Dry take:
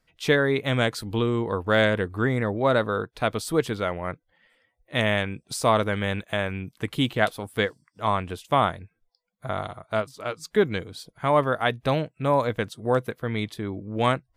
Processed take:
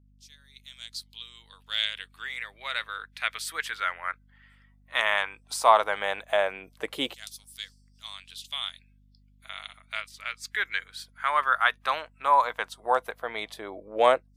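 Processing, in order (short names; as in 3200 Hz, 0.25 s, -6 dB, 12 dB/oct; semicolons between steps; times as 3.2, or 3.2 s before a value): opening faded in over 2.19 s; LFO high-pass saw down 0.14 Hz 510–6000 Hz; hum 50 Hz, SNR 30 dB; gain -1 dB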